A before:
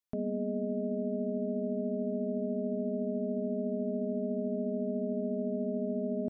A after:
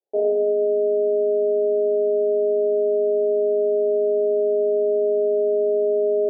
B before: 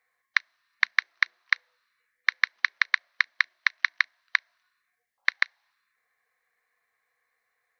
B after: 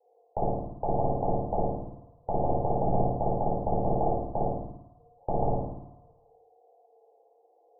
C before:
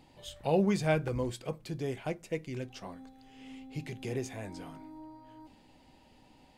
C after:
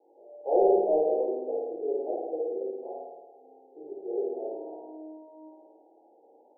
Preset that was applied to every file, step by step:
elliptic high-pass filter 360 Hz, stop band 70 dB
flutter between parallel walls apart 9.3 metres, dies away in 1.3 s
in parallel at −9 dB: sine wavefolder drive 12 dB, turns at −1.5 dBFS
on the sum: Butterworth low-pass 770 Hz 72 dB per octave
rectangular room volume 530 cubic metres, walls furnished, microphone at 4.4 metres
normalise the peak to −12 dBFS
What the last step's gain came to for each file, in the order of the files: +1.5, +7.5, −10.5 decibels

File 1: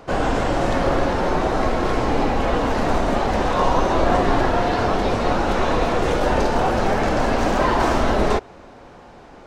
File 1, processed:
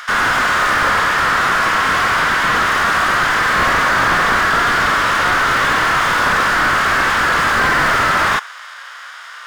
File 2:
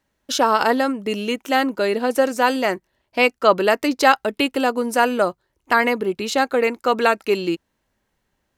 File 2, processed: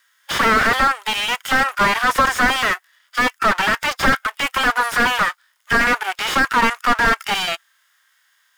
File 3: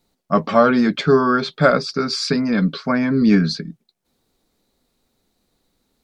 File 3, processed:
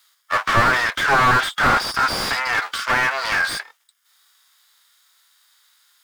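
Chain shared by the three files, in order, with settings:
lower of the sound and its delayed copy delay 0.59 ms
inverse Chebyshev high-pass filter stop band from 230 Hz, stop band 70 dB
harmonic and percussive parts rebalanced percussive −12 dB
dynamic equaliser 4,300 Hz, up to −4 dB, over −47 dBFS, Q 2
slew-rate limiting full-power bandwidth 29 Hz
normalise the peak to −3 dBFS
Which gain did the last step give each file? +21.5, +20.5, +19.5 decibels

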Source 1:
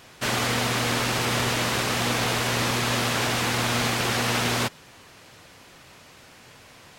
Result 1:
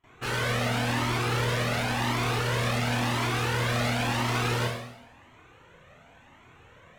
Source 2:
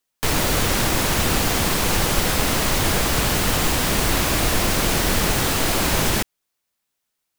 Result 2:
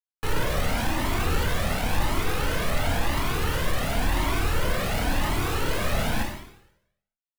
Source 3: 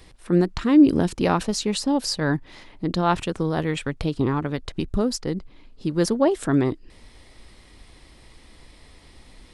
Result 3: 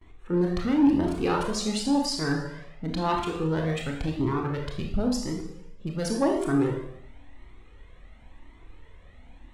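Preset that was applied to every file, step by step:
adaptive Wiener filter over 9 samples
noise gate with hold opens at −43 dBFS
four-comb reverb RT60 0.8 s, combs from 25 ms, DRR 1 dB
soft clipping −8 dBFS
flanger whose copies keep moving one way rising 0.94 Hz
loudness normalisation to −27 LKFS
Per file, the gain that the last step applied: 0.0, −2.0, −0.5 decibels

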